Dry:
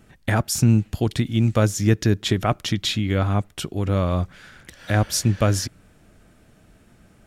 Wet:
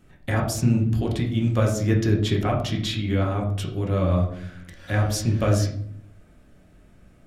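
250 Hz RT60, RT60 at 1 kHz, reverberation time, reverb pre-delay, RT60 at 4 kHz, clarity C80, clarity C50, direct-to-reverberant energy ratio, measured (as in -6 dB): 0.90 s, 0.55 s, 0.60 s, 5 ms, 0.40 s, 10.0 dB, 7.0 dB, -1.5 dB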